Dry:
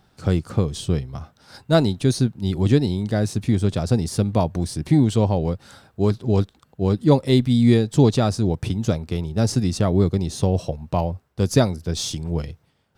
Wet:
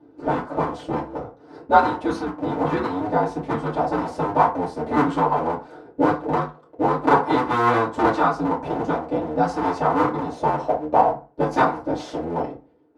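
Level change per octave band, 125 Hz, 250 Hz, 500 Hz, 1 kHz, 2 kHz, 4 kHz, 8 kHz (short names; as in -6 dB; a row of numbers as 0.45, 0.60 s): -13.0 dB, -4.0 dB, +0.5 dB, +12.5 dB, +7.5 dB, -9.5 dB, under -15 dB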